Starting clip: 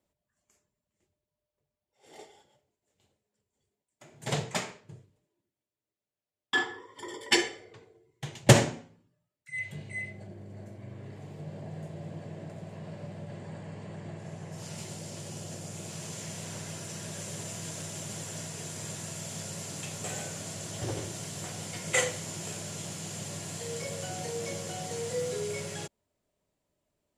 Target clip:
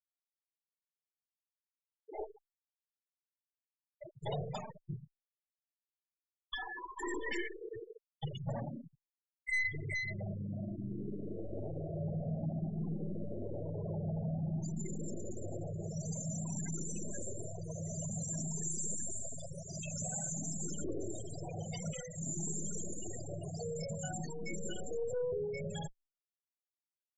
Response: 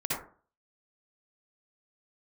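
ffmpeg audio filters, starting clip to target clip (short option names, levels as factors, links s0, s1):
-filter_complex "[0:a]aeval=exprs='0.668*(cos(1*acos(clip(val(0)/0.668,-1,1)))-cos(1*PI/2))+0.299*(cos(5*acos(clip(val(0)/0.668,-1,1)))-cos(5*PI/2))+0.15*(cos(6*acos(clip(val(0)/0.668,-1,1)))-cos(6*PI/2))+0.0596*(cos(7*acos(clip(val(0)/0.668,-1,1)))-cos(7*PI/2))+0.188*(cos(8*acos(clip(val(0)/0.668,-1,1)))-cos(8*PI/2))':c=same,asettb=1/sr,asplit=3[s0][s1][s2];[s0]atrim=end=18.634[s3];[s1]atrim=start=18.63:end=20.34,asetpts=PTS-STARTPTS,afade=t=in:d=0.004:c=qsin,afade=t=out:st=1.706:d=0.004:c=qsin,highshelf=f=4900:g=5[s4];[s2]atrim=start=20.336[s5];[s3][s4]acrossfade=d=0.004:c1=hsin:c2=qsin[s6];[s6][s5]acrossfade=d=0.004:c1=qsin:c2=hsin,acompressor=threshold=0.0398:ratio=8,highpass=f=190:p=1,asplit=2[s7][s8];[s8]adelay=419.8,volume=0.0631,highshelf=f=4000:g=-9.45[s9];[s7][s9]amix=inputs=2:normalize=0,aeval=exprs='(tanh(70.8*val(0)+0.5)-tanh(0.5))/70.8':c=same,asplit=2[s10][s11];[1:a]atrim=start_sample=2205,adelay=51[s12];[s11][s12]afir=irnorm=-1:irlink=0,volume=0.0708[s13];[s10][s13]amix=inputs=2:normalize=0,afftfilt=real='re*gte(hypot(re,im),0.02)':imag='im*gte(hypot(re,im),0.02)':win_size=1024:overlap=0.75,adynamicequalizer=threshold=0.00126:dfrequency=710:dqfactor=1.3:tfrequency=710:tqfactor=1.3:attack=5:release=100:ratio=0.375:range=3:mode=cutabove:tftype=bell,asplit=2[s14][s15];[s15]afreqshift=0.52[s16];[s14][s16]amix=inputs=2:normalize=1,volume=2.37"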